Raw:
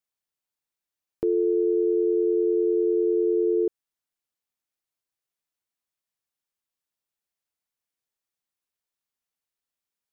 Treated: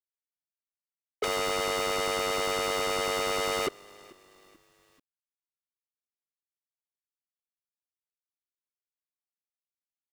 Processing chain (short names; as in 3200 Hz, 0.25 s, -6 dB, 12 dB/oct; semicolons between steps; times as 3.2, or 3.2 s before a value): sine-wave speech; low-pass opened by the level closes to 510 Hz; sample leveller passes 5; wavefolder -21.5 dBFS; on a send: frequency-shifting echo 0.437 s, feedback 45%, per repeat -39 Hz, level -23.5 dB; on the sum: bit-crush 11-bit